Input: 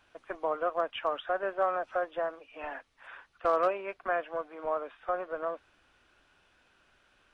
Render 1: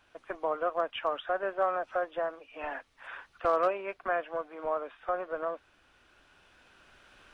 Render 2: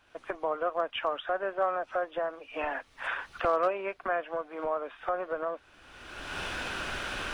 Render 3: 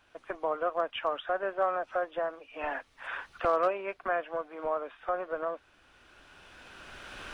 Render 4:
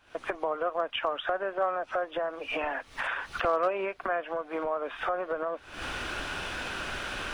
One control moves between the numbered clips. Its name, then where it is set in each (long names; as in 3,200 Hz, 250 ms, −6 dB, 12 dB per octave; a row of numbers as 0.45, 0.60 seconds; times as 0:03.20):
camcorder AGC, rising by: 5.1, 34, 13, 91 dB per second